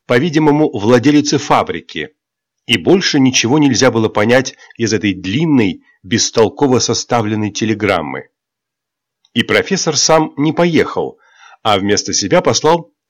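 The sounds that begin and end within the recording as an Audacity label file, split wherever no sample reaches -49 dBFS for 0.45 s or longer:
2.680000	8.270000	sound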